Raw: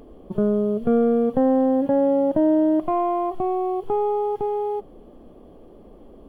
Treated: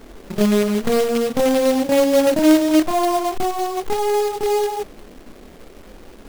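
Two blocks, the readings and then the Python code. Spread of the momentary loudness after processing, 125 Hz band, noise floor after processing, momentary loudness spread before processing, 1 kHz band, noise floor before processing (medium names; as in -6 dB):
9 LU, +3.5 dB, -43 dBFS, 6 LU, +3.0 dB, -46 dBFS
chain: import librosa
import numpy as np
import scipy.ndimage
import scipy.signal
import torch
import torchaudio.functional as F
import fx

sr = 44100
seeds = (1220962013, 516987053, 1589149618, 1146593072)

y = fx.chorus_voices(x, sr, voices=6, hz=0.88, base_ms=26, depth_ms=2.9, mix_pct=45)
y = fx.quant_companded(y, sr, bits=4)
y = y * 10.0 ** (5.0 / 20.0)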